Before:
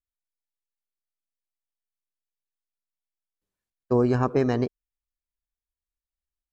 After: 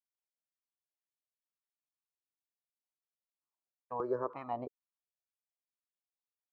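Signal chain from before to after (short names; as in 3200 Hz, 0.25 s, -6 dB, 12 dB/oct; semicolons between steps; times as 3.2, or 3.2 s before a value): wah 2.1 Hz 540–1200 Hz, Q 2.9; step phaser 3 Hz 410–1600 Hz; gain +1 dB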